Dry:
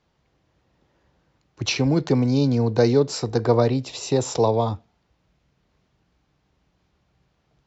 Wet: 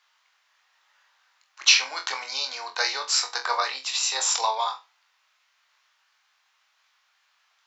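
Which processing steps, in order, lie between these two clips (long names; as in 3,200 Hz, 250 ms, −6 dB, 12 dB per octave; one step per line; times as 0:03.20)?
high-pass filter 1,100 Hz 24 dB per octave
on a send: flutter between parallel walls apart 3.9 metres, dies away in 0.23 s
on the sum: level +7.5 dB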